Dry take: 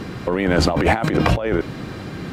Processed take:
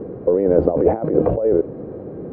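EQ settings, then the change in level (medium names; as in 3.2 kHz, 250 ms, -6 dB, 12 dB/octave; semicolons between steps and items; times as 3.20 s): resonant low-pass 480 Hz, resonance Q 3.4; distance through air 140 m; bass shelf 320 Hz -8.5 dB; +1.0 dB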